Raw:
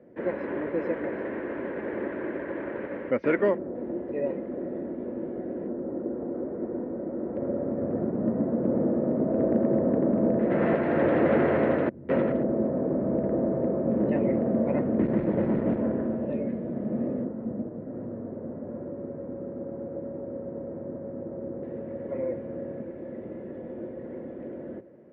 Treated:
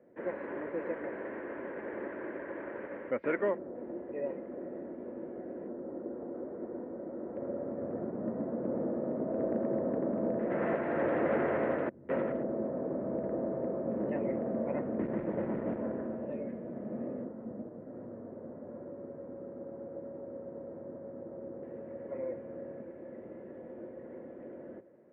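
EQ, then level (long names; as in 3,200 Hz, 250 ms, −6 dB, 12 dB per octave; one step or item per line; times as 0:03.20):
high-frequency loss of the air 470 metres
low-shelf EQ 410 Hz −11.5 dB
−1.0 dB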